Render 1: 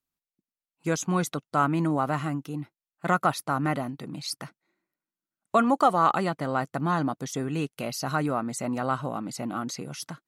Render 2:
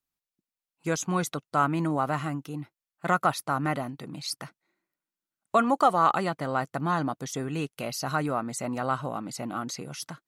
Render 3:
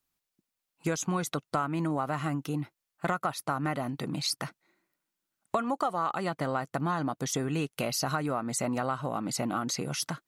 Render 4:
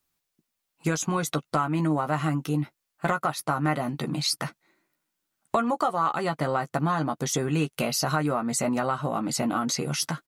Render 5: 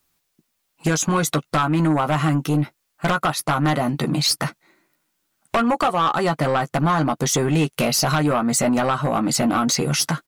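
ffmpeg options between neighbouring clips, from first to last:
-af "equalizer=f=230:w=0.9:g=-3"
-af "acompressor=threshold=0.0224:ratio=6,volume=2"
-filter_complex "[0:a]asplit=2[s0][s1];[s1]adelay=13,volume=0.447[s2];[s0][s2]amix=inputs=2:normalize=0,volume=1.5"
-af "aeval=exprs='0.316*(cos(1*acos(clip(val(0)/0.316,-1,1)))-cos(1*PI/2))+0.141*(cos(5*acos(clip(val(0)/0.316,-1,1)))-cos(5*PI/2))':c=same,volume=0.841"

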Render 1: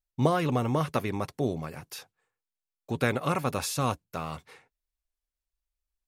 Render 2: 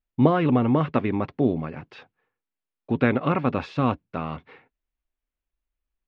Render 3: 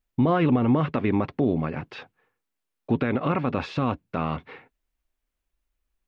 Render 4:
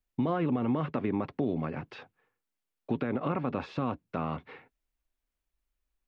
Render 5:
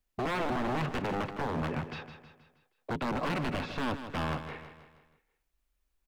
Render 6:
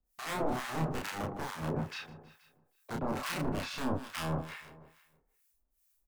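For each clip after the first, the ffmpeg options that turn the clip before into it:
-af "lowpass=f=3100:w=0.5412,lowpass=f=3100:w=1.3066,equalizer=f=260:t=o:w=0.93:g=7.5,volume=1.41"
-filter_complex "[0:a]asplit=2[s0][s1];[s1]acompressor=threshold=0.0398:ratio=6,volume=0.891[s2];[s0][s2]amix=inputs=2:normalize=0,alimiter=limit=0.237:level=0:latency=1:release=40"
-filter_complex "[0:a]acrossover=split=130|1500[s0][s1][s2];[s0]acompressor=threshold=0.00794:ratio=4[s3];[s1]acompressor=threshold=0.0891:ratio=4[s4];[s2]acompressor=threshold=0.00708:ratio=4[s5];[s3][s4][s5]amix=inputs=3:normalize=0,volume=0.596"
-filter_complex "[0:a]aeval=exprs='0.0316*(abs(mod(val(0)/0.0316+3,4)-2)-1)':c=same,asplit=2[s0][s1];[s1]aecho=0:1:159|318|477|636|795:0.299|0.143|0.0688|0.033|0.0158[s2];[s0][s2]amix=inputs=2:normalize=0,volume=1.5"
-filter_complex "[0:a]acrossover=split=1100[s0][s1];[s0]aeval=exprs='val(0)*(1-1/2+1/2*cos(2*PI*2.3*n/s))':c=same[s2];[s1]aeval=exprs='val(0)*(1-1/2-1/2*cos(2*PI*2.3*n/s))':c=same[s3];[s2][s3]amix=inputs=2:normalize=0,acrossover=split=500|4200[s4][s5][s6];[s6]crystalizer=i=3:c=0[s7];[s4][s5][s7]amix=inputs=3:normalize=0,asplit=2[s8][s9];[s9]adelay=31,volume=0.794[s10];[s8][s10]amix=inputs=2:normalize=0"

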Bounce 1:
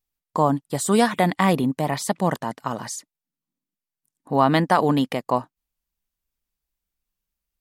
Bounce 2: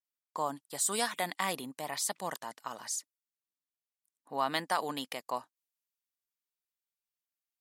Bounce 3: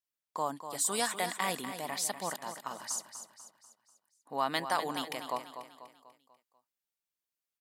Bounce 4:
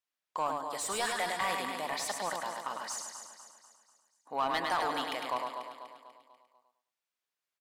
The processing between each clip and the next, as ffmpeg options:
-af "highpass=f=1100:p=1,adynamicequalizer=threshold=0.00891:dfrequency=3700:dqfactor=0.7:tfrequency=3700:tqfactor=0.7:attack=5:release=100:ratio=0.375:range=3.5:mode=boostabove:tftype=highshelf,volume=0.376"
-af "aecho=1:1:245|490|735|980|1225:0.316|0.145|0.0669|0.0308|0.0142"
-filter_complex "[0:a]aecho=1:1:104|208|312|416:0.531|0.159|0.0478|0.0143,asplit=2[s0][s1];[s1]highpass=f=720:p=1,volume=6.31,asoftclip=type=tanh:threshold=0.188[s2];[s0][s2]amix=inputs=2:normalize=0,lowpass=f=2800:p=1,volume=0.501,volume=0.562"

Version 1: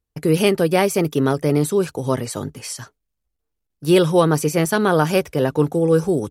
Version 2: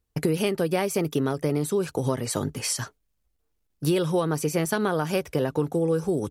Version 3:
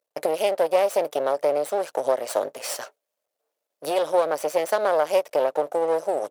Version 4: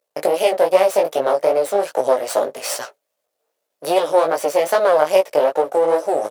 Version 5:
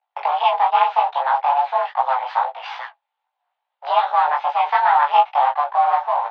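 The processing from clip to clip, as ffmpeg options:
-af "acompressor=threshold=0.0562:ratio=6,volume=1.5"
-af "aeval=exprs='max(val(0),0)':c=same,highpass=f=580:t=q:w=4.9,volume=1.12"
-af "flanger=delay=15.5:depth=4.7:speed=2.5,volume=2.82"
-af "acrusher=bits=5:mode=log:mix=0:aa=0.000001,flanger=delay=15.5:depth=5.7:speed=2.4,highpass=f=180:t=q:w=0.5412,highpass=f=180:t=q:w=1.307,lowpass=f=3400:t=q:w=0.5176,lowpass=f=3400:t=q:w=0.7071,lowpass=f=3400:t=q:w=1.932,afreqshift=270,volume=1.26"

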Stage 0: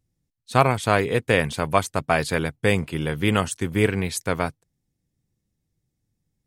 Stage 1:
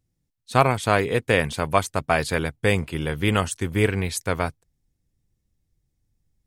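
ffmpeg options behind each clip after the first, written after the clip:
-af "asubboost=boost=3.5:cutoff=77"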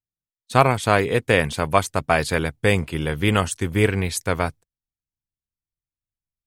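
-af "agate=range=0.0501:threshold=0.00708:ratio=16:detection=peak,volume=1.26"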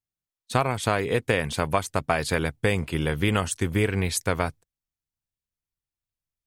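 -af "acompressor=threshold=0.112:ratio=5"

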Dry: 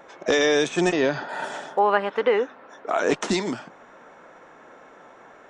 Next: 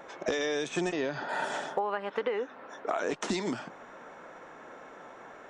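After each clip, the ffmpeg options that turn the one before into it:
-af "acompressor=threshold=0.0447:ratio=16"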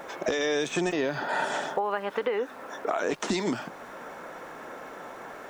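-filter_complex "[0:a]asplit=2[s0][s1];[s1]alimiter=level_in=1.41:limit=0.0631:level=0:latency=1:release=495,volume=0.708,volume=1.41[s2];[s0][s2]amix=inputs=2:normalize=0,aeval=exprs='val(0)*gte(abs(val(0)),0.00299)':c=same,volume=0.891"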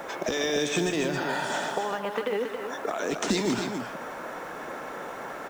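-filter_complex "[0:a]acrossover=split=270|3000[s0][s1][s2];[s1]acompressor=threshold=0.0251:ratio=6[s3];[s0][s3][s2]amix=inputs=3:normalize=0,asplit=2[s4][s5];[s5]acrusher=bits=4:mode=log:mix=0:aa=0.000001,volume=0.501[s6];[s4][s6]amix=inputs=2:normalize=0,aecho=1:1:148.7|274.1:0.316|0.447"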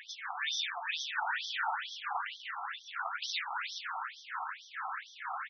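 -filter_complex "[0:a]asoftclip=type=tanh:threshold=0.0631,asplit=9[s0][s1][s2][s3][s4][s5][s6][s7][s8];[s1]adelay=139,afreqshift=-41,volume=0.531[s9];[s2]adelay=278,afreqshift=-82,volume=0.309[s10];[s3]adelay=417,afreqshift=-123,volume=0.178[s11];[s4]adelay=556,afreqshift=-164,volume=0.104[s12];[s5]adelay=695,afreqshift=-205,volume=0.0603[s13];[s6]adelay=834,afreqshift=-246,volume=0.0347[s14];[s7]adelay=973,afreqshift=-287,volume=0.0202[s15];[s8]adelay=1112,afreqshift=-328,volume=0.0117[s16];[s0][s9][s10][s11][s12][s13][s14][s15][s16]amix=inputs=9:normalize=0,afftfilt=real='re*between(b*sr/1024,960*pow(4500/960,0.5+0.5*sin(2*PI*2.2*pts/sr))/1.41,960*pow(4500/960,0.5+0.5*sin(2*PI*2.2*pts/sr))*1.41)':imag='im*between(b*sr/1024,960*pow(4500/960,0.5+0.5*sin(2*PI*2.2*pts/sr))/1.41,960*pow(4500/960,0.5+0.5*sin(2*PI*2.2*pts/sr))*1.41)':win_size=1024:overlap=0.75,volume=1.33"

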